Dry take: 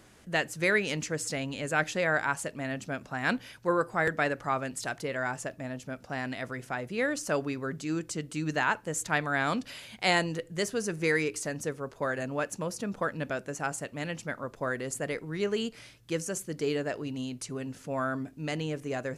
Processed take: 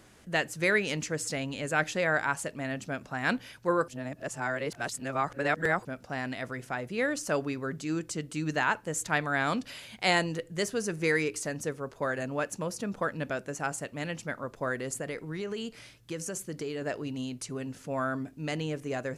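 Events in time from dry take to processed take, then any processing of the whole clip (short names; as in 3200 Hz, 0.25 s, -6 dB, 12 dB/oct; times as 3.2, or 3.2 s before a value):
3.88–5.85 reverse
15.01–16.82 compressor, threshold -31 dBFS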